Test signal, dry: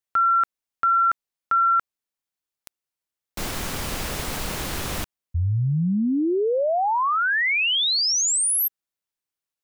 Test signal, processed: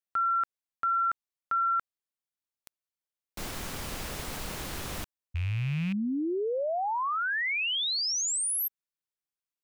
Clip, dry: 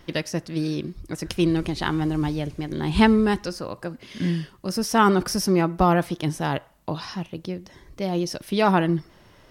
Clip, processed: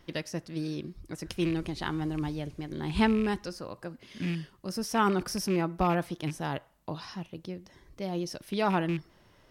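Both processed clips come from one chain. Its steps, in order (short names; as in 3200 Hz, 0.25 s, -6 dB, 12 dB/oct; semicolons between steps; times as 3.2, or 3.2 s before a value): rattling part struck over -23 dBFS, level -22 dBFS; gain -8 dB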